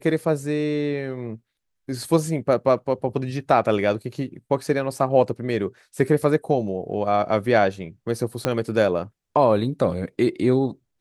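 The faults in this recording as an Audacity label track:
8.450000	8.450000	click −7 dBFS

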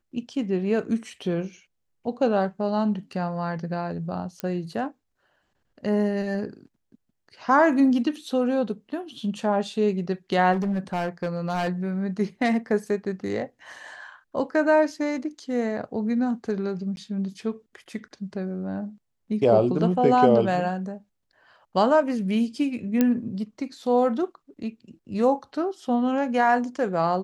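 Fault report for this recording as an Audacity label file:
4.400000	4.400000	click −15 dBFS
10.520000	11.690000	clipping −22 dBFS
16.960000	16.970000	drop-out 11 ms
23.010000	23.010000	click −8 dBFS

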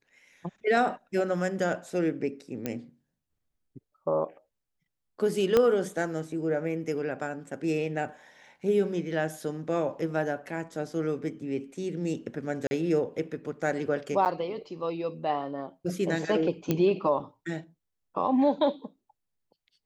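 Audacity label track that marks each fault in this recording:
2.660000	2.660000	click −16 dBFS
5.570000	5.570000	click −10 dBFS
12.670000	12.710000	drop-out 40 ms
14.250000	14.260000	drop-out 8.6 ms
16.710000	16.710000	click −12 dBFS

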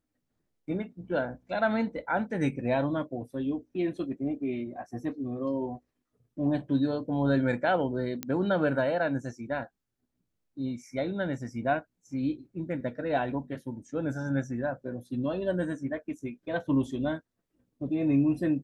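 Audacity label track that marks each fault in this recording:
8.230000	8.230000	click −15 dBFS

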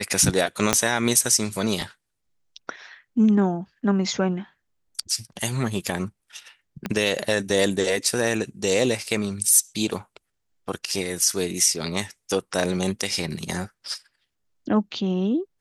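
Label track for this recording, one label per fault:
0.730000	0.730000	click −2 dBFS
6.860000	6.860000	click −13 dBFS

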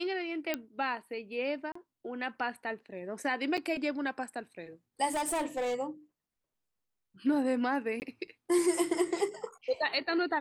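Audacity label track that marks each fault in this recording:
0.540000	0.540000	click −16 dBFS
1.720000	1.750000	drop-out 34 ms
3.570000	3.580000	drop-out 7 ms
5.070000	5.750000	clipping −28.5 dBFS
8.000000	8.020000	drop-out 19 ms

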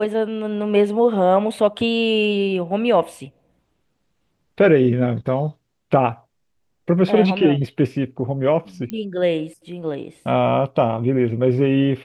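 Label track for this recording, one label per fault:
8.900000	8.900000	click −15 dBFS

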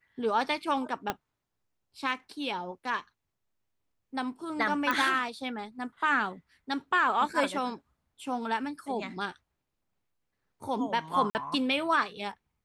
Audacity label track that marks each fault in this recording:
1.100000	1.100000	click −14 dBFS
4.910000	4.910000	click −15 dBFS
11.300000	11.350000	drop-out 49 ms

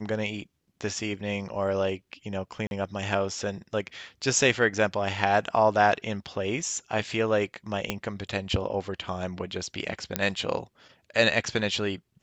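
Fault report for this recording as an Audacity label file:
2.670000	2.710000	drop-out 41 ms
7.900000	7.900000	click −11 dBFS
10.160000	10.160000	click −7 dBFS

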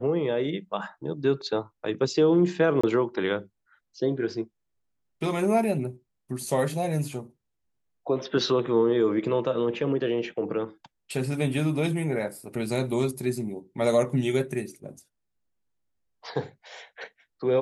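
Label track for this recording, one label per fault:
2.810000	2.830000	drop-out 25 ms

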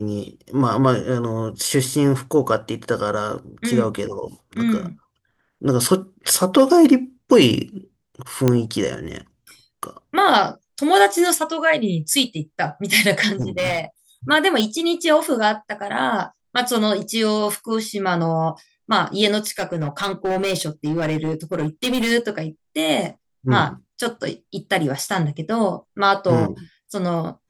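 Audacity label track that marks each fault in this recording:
8.480000	8.480000	click −4 dBFS
13.400000	13.810000	clipping −18 dBFS
14.600000	14.600000	click −7 dBFS
19.380000	22.120000	clipping −17.5 dBFS

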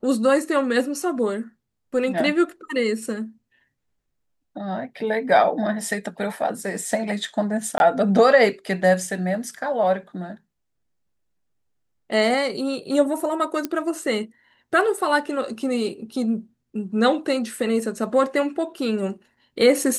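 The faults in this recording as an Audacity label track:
7.780000	7.800000	drop-out 21 ms
13.650000	13.650000	click −11 dBFS

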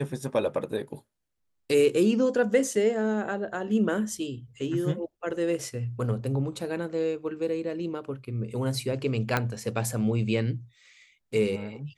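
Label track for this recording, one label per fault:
9.370000	9.370000	click −10 dBFS

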